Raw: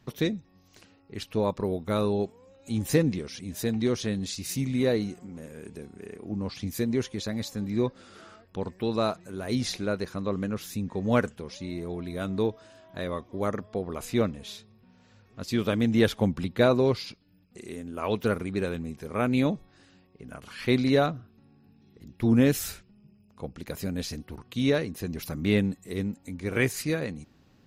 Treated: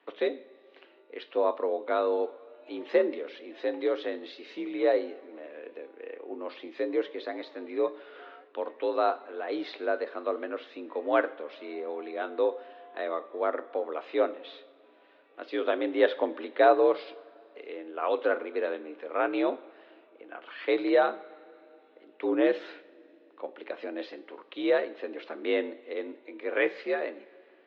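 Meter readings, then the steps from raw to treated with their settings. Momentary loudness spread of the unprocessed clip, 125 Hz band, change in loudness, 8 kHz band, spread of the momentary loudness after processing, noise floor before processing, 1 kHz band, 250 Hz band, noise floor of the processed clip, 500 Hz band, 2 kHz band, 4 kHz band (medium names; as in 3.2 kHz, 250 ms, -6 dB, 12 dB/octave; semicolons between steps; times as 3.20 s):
17 LU, under -35 dB, -1.5 dB, under -30 dB, 18 LU, -61 dBFS, +4.0 dB, -7.5 dB, -59 dBFS, +2.0 dB, 0.0 dB, -6.5 dB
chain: dynamic bell 2.5 kHz, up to -6 dB, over -50 dBFS, Q 2.3; two-slope reverb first 0.46 s, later 3.1 s, from -18 dB, DRR 11 dB; mistuned SSB +60 Hz 310–3300 Hz; trim +1.5 dB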